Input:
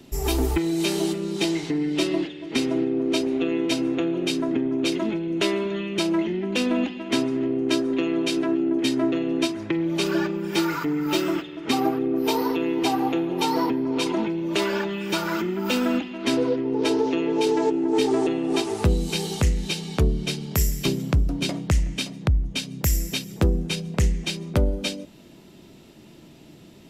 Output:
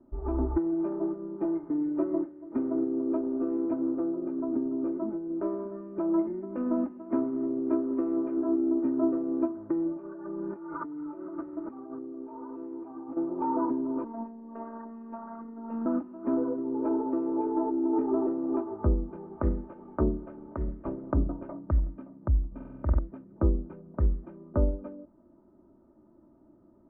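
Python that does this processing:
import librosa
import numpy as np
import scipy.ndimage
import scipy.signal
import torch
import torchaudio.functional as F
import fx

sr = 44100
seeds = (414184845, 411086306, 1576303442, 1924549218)

y = fx.air_absorb(x, sr, metres=310.0, at=(3.95, 5.59))
y = fx.peak_eq(y, sr, hz=2100.0, db=6.0, octaves=0.41, at=(6.12, 8.38))
y = fx.over_compress(y, sr, threshold_db=-30.0, ratio=-1.0, at=(9.92, 13.17))
y = fx.robotise(y, sr, hz=228.0, at=(14.04, 15.86))
y = fx.spec_clip(y, sr, under_db=13, at=(19.36, 21.53), fade=0.02)
y = fx.room_flutter(y, sr, wall_m=8.0, rt60_s=1.4, at=(22.47, 22.99))
y = scipy.signal.sosfilt(scipy.signal.ellip(4, 1.0, 70, 1300.0, 'lowpass', fs=sr, output='sos'), y)
y = y + 0.62 * np.pad(y, (int(3.3 * sr / 1000.0), 0))[:len(y)]
y = fx.upward_expand(y, sr, threshold_db=-29.0, expansion=1.5)
y = F.gain(torch.from_numpy(y), -4.5).numpy()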